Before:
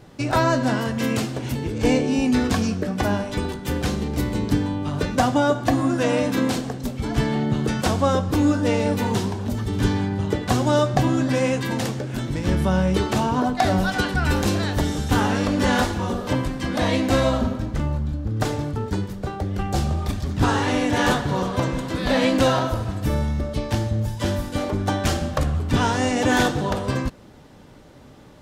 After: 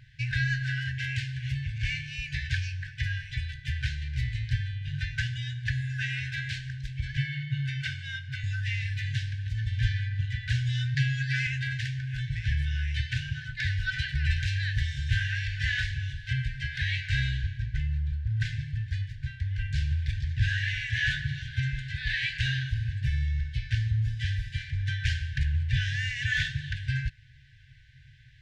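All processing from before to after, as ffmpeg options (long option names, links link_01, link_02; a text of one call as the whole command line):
ffmpeg -i in.wav -filter_complex "[0:a]asettb=1/sr,asplit=3[link_01][link_02][link_03];[link_01]atrim=end=7.174[link_04];[link_02]atrim=start=7.17:end=8.44,asetpts=PTS-STARTPTS,afade=type=in:duration=0.004:curve=qsin,afade=type=out:start_time=1.266:duration=0.004:curve=qsin,highpass=frequency=190:width=0.5412,highpass=frequency=190:width=1.3066,bass=frequency=250:gain=11,treble=frequency=4000:gain=-6,aecho=1:1:1.4:0.55,atrim=end_sample=56007[link_05];[link_03]atrim=start=8.436[link_06];[link_04][link_05]acrossfade=duration=0.004:curve1=hsin:curve2=qsin[link_07];[link_07][link_06]acrossfade=duration=0.004:curve1=qsin:curve2=hsin,asettb=1/sr,asplit=3[link_08][link_09][link_10];[link_08]atrim=end=10.954[link_11];[link_09]atrim=start=10.95:end=11.47,asetpts=PTS-STARTPTS,afade=type=in:duration=0.004:curve=qsin,afade=type=out:start_time=0.516:duration=0.004:curve=qsin,highpass=170,equalizer=frequency=4500:width_type=o:width=0.24:gain=6.5,aecho=1:1:7.3:0.92,atrim=end_sample=22932[link_12];[link_10]atrim=start=11.466[link_13];[link_11][link_12]acrossfade=duration=0.004:curve1=hsin:curve2=qsin[link_14];[link_14][link_13]acrossfade=duration=0.004:curve1=qsin:curve2=hsin,lowshelf=frequency=130:gain=-4,afftfilt=real='re*(1-between(b*sr/4096,140,1500))':imag='im*(1-between(b*sr/4096,140,1500))':win_size=4096:overlap=0.75,lowpass=2900" out.wav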